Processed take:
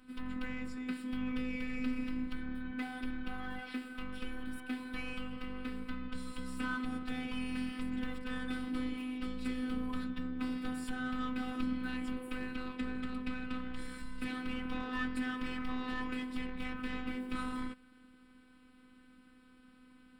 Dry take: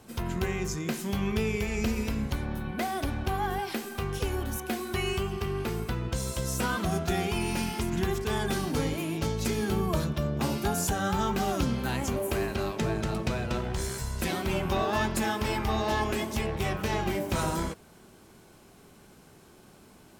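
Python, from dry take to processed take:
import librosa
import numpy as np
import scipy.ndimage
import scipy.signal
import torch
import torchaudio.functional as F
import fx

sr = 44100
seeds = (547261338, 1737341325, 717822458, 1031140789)

p1 = np.convolve(x, np.full(7, 1.0 / 7))[:len(x)]
p2 = fx.band_shelf(p1, sr, hz=640.0, db=-13.5, octaves=1.3)
p3 = 10.0 ** (-35.5 / 20.0) * np.tanh(p2 / 10.0 ** (-35.5 / 20.0))
p4 = p2 + F.gain(torch.from_numpy(p3), -5.0).numpy()
p5 = fx.robotise(p4, sr, hz=254.0)
y = F.gain(torch.from_numpy(p5), -5.5).numpy()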